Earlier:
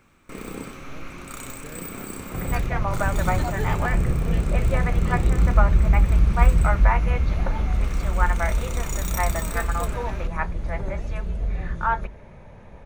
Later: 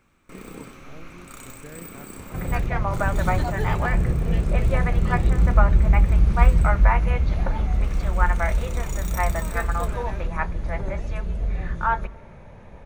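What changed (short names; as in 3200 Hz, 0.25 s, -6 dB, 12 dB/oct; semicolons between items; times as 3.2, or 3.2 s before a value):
first sound -5.5 dB; reverb: on, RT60 1.5 s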